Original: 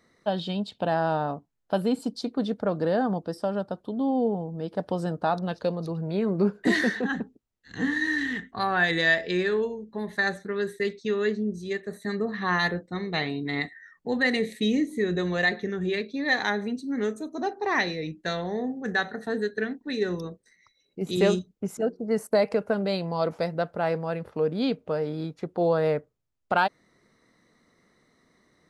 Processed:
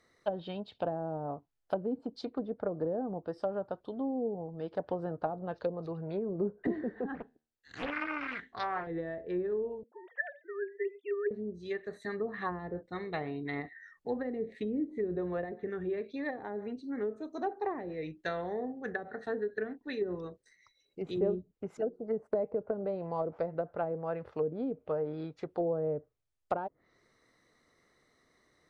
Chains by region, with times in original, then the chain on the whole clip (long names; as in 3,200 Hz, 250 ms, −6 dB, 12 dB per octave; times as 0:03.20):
0:07.15–0:08.87: low-shelf EQ 140 Hz −5.5 dB + tuned comb filter 77 Hz, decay 0.42 s, mix 30% + highs frequency-modulated by the lows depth 0.9 ms
0:09.83–0:11.31: three sine waves on the formant tracks + high-pass filter 450 Hz
whole clip: treble cut that deepens with the level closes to 450 Hz, closed at −21.5 dBFS; parametric band 200 Hz −9 dB 0.91 octaves; notch filter 960 Hz, Q 29; level −3.5 dB